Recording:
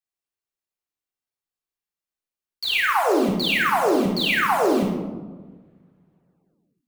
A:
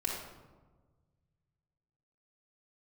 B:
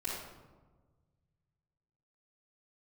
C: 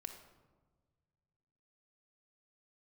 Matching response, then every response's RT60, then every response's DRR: A; 1.4, 1.3, 1.4 seconds; −5.0, −13.0, 4.0 decibels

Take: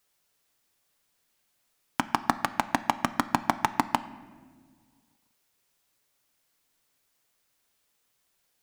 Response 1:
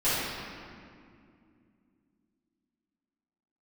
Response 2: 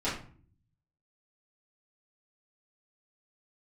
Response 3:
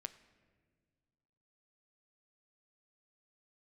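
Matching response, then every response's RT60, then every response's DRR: 3; 2.4, 0.45, 1.7 seconds; −15.0, −12.0, 11.0 decibels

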